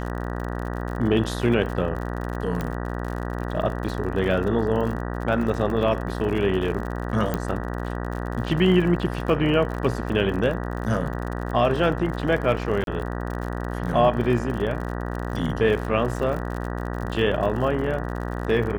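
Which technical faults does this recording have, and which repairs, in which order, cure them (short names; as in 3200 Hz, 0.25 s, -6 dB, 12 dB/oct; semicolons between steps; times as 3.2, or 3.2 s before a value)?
buzz 60 Hz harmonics 32 -29 dBFS
crackle 57/s -31 dBFS
2.61 pop -15 dBFS
7.34 pop -11 dBFS
12.84–12.87 gap 32 ms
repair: de-click; de-hum 60 Hz, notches 32; interpolate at 12.84, 32 ms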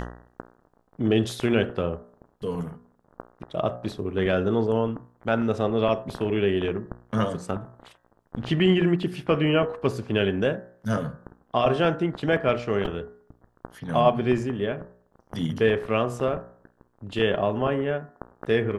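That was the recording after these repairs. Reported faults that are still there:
none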